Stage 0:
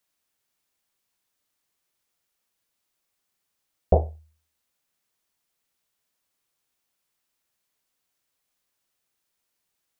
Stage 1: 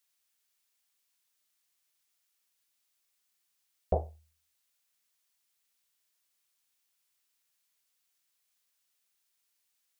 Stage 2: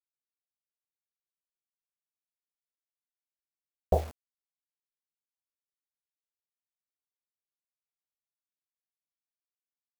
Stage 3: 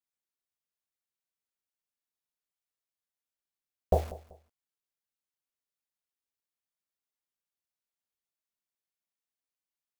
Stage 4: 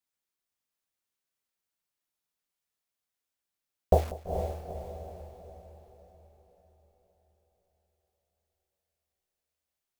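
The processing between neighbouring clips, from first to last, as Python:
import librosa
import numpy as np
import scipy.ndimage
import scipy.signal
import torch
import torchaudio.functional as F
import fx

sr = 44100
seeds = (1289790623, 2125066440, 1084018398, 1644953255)

y1 = fx.tilt_shelf(x, sr, db=-6.5, hz=1200.0)
y1 = y1 * 10.0 ** (-5.0 / 20.0)
y2 = fx.quant_dither(y1, sr, seeds[0], bits=8, dither='none')
y2 = y2 * 10.0 ** (3.5 / 20.0)
y3 = fx.echo_feedback(y2, sr, ms=192, feedback_pct=27, wet_db=-18.5)
y4 = fx.echo_diffused(y3, sr, ms=450, feedback_pct=48, wet_db=-7)
y4 = y4 * 10.0 ** (3.5 / 20.0)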